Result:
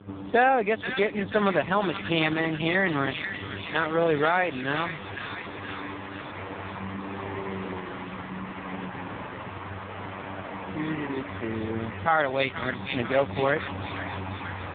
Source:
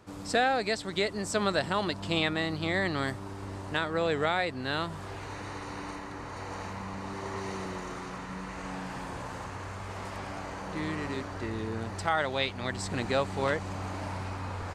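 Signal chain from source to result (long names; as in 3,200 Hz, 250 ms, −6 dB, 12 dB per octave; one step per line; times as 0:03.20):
delay with a high-pass on its return 485 ms, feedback 67%, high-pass 1,700 Hz, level −3 dB
hum with harmonics 100 Hz, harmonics 5, −51 dBFS −4 dB per octave
level +6 dB
AMR narrowband 5.15 kbit/s 8,000 Hz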